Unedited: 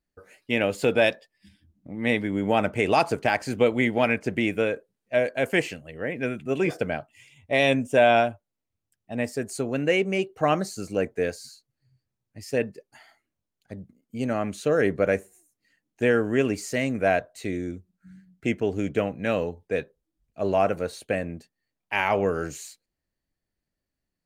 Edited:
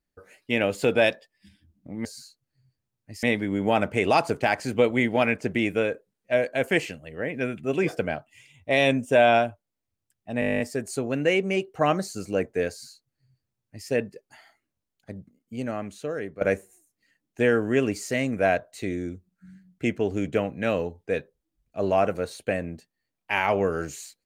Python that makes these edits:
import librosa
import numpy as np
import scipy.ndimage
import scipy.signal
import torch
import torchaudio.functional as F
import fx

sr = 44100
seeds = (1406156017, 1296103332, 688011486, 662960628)

y = fx.edit(x, sr, fx.stutter(start_s=9.22, slice_s=0.02, count=11),
    fx.duplicate(start_s=11.32, length_s=1.18, to_s=2.05),
    fx.fade_out_to(start_s=13.74, length_s=1.29, floor_db=-15.5), tone=tone)